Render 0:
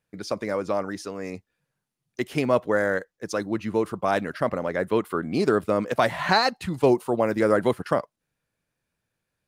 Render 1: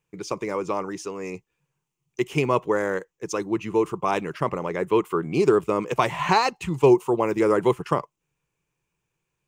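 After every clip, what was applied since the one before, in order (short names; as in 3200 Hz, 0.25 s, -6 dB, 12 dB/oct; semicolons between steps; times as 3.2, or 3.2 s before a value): ripple EQ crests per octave 0.72, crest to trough 10 dB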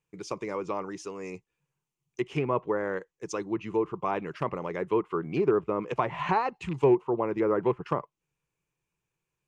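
rattling part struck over -23 dBFS, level -26 dBFS; treble ducked by the level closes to 1700 Hz, closed at -18 dBFS; gain -5.5 dB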